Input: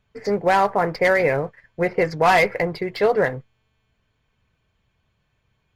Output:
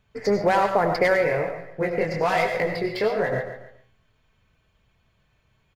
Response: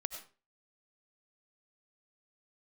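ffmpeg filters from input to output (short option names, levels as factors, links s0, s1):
-filter_complex "[0:a]aecho=1:1:141|282|423:0.178|0.0605|0.0206,acompressor=threshold=0.112:ratio=6[s0];[1:a]atrim=start_sample=2205[s1];[s0][s1]afir=irnorm=-1:irlink=0,asplit=3[s2][s3][s4];[s2]afade=t=out:st=1.16:d=0.02[s5];[s3]flanger=delay=17.5:depth=7.8:speed=1.2,afade=t=in:st=1.16:d=0.02,afade=t=out:st=3.31:d=0.02[s6];[s4]afade=t=in:st=3.31:d=0.02[s7];[s5][s6][s7]amix=inputs=3:normalize=0,volume=1.5"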